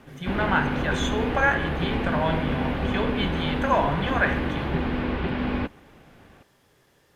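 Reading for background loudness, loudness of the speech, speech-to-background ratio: −28.0 LKFS, −26.5 LKFS, 1.5 dB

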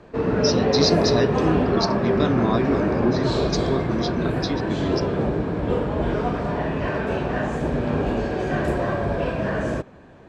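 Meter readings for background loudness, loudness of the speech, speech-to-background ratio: −23.0 LKFS, −26.0 LKFS, −3.0 dB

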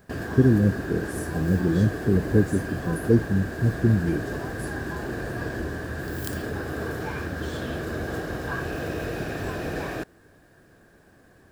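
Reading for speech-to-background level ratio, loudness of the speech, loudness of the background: 7.5 dB, −24.0 LKFS, −31.5 LKFS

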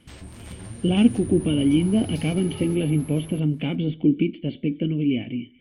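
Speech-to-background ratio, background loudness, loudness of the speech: 13.5 dB, −36.5 LKFS, −23.0 LKFS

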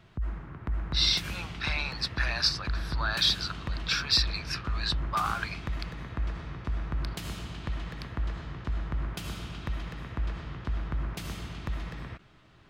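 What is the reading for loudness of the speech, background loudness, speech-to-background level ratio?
−28.5 LKFS, −36.5 LKFS, 8.0 dB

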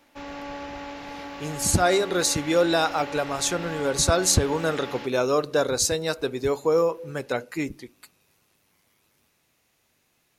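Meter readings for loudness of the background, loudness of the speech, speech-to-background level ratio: −36.5 LKFS, −24.0 LKFS, 12.5 dB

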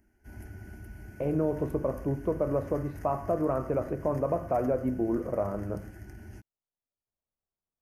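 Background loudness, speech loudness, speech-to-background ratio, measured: −46.0 LKFS, −30.5 LKFS, 15.5 dB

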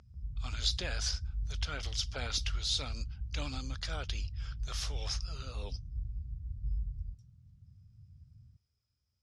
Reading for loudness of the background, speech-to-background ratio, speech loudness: −41.0 LKFS, 3.5 dB, −37.5 LKFS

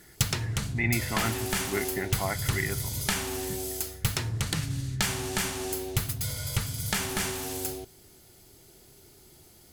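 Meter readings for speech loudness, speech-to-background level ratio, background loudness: −33.0 LKFS, −2.5 dB, −30.5 LKFS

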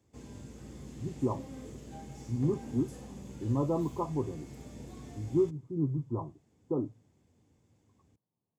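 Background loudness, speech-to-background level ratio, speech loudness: −47.0 LKFS, 13.0 dB, −34.0 LKFS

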